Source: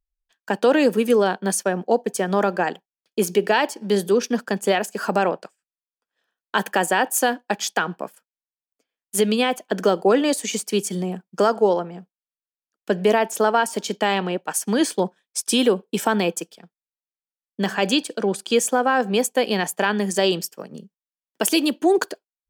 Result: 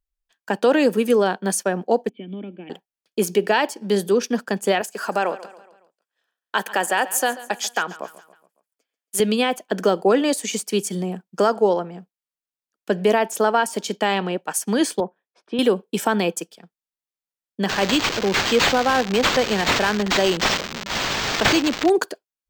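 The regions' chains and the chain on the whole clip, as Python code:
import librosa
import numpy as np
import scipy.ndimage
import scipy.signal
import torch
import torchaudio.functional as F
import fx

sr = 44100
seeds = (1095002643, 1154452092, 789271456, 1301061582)

y = fx.chain(x, sr, fx.formant_cascade(vowel='i'),
    fx.high_shelf(hz=3300.0, db=10.0), at=(2.09, 2.7))
y = fx.chain(y, sr, fx.highpass(hz=440.0, slope=6),
    fx.echo_feedback(ms=139, feedback_pct=48, wet_db=-17), at=(4.81, 9.2))
y = fx.chain(y, sr, fx.bandpass_q(hz=630.0, q=0.64),
    fx.air_absorb(metres=340.0), at=(15.0, 15.59))
y = fx.chain(y, sr, fx.crossing_spikes(level_db=-13.5),
    fx.resample_linear(factor=4), at=(17.69, 21.9))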